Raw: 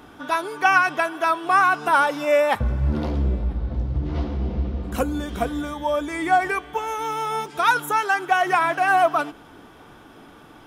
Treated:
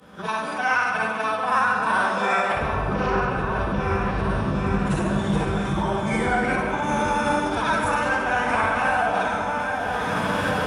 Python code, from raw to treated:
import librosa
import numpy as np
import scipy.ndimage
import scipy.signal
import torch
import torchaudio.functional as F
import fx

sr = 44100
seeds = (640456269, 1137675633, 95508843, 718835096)

p1 = fx.frame_reverse(x, sr, frame_ms=140.0)
p2 = fx.recorder_agc(p1, sr, target_db=-16.0, rise_db_per_s=24.0, max_gain_db=30)
p3 = fx.low_shelf(p2, sr, hz=100.0, db=4.0)
p4 = p3 + fx.echo_opening(p3, sr, ms=786, hz=750, octaves=2, feedback_pct=70, wet_db=-3, dry=0)
p5 = fx.dynamic_eq(p4, sr, hz=620.0, q=1.7, threshold_db=-34.0, ratio=4.0, max_db=-4)
p6 = fx.pitch_keep_formants(p5, sr, semitones=-7.0)
p7 = scipy.signal.sosfilt(scipy.signal.butter(4, 64.0, 'highpass', fs=sr, output='sos'), p6)
y = fx.rev_freeverb(p7, sr, rt60_s=2.0, hf_ratio=0.5, predelay_ms=65, drr_db=3.5)